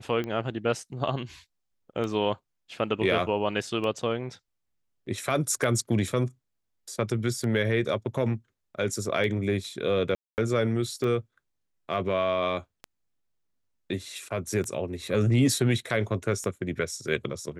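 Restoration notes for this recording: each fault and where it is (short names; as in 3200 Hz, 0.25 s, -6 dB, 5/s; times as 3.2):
tick 33 1/3 rpm -21 dBFS
10.15–10.38 gap 0.229 s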